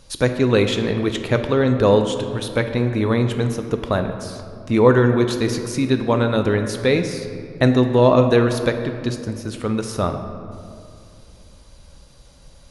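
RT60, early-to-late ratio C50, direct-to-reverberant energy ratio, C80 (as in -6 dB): 2.5 s, 7.5 dB, 6.5 dB, 9.0 dB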